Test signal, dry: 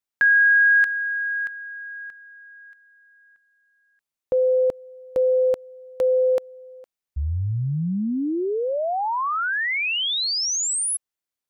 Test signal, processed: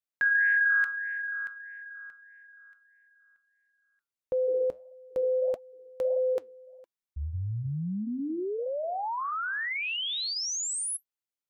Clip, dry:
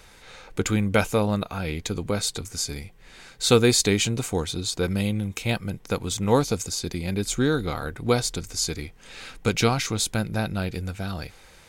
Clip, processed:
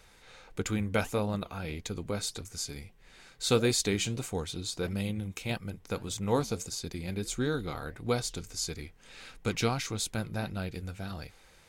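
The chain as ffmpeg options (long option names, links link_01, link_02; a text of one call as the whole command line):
ffmpeg -i in.wav -af "flanger=delay=1.4:depth=6.9:regen=-81:speed=1.6:shape=sinusoidal,volume=-3.5dB" out.wav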